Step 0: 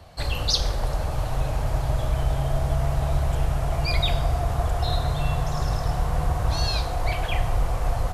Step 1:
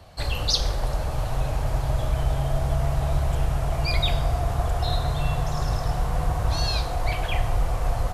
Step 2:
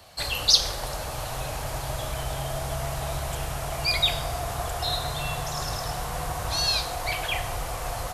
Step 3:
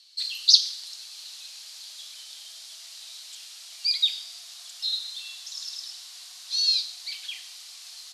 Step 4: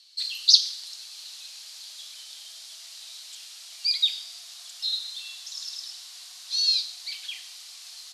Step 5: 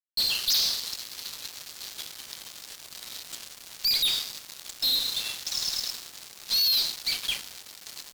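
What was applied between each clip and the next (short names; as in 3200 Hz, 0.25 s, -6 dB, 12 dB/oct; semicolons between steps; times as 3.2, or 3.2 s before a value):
de-hum 77.13 Hz, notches 29
tilt +2.5 dB/oct
ladder band-pass 4900 Hz, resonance 50%; gain +8 dB
nothing audible
fuzz box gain 35 dB, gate -40 dBFS; gain -8.5 dB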